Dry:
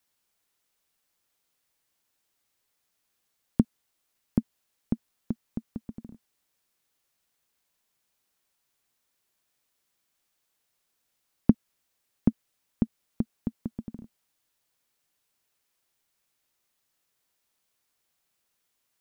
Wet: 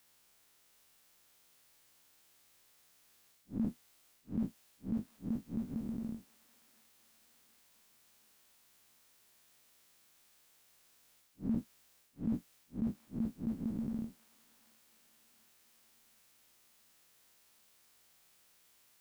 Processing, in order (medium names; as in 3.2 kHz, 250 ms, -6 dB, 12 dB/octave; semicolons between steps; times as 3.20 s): spectral blur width 94 ms; reverse; compression 6:1, threshold -43 dBFS, peak gain reduction 17 dB; reverse; feedback echo behind a high-pass 728 ms, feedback 58%, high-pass 1.6 kHz, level -7.5 dB; trim +10.5 dB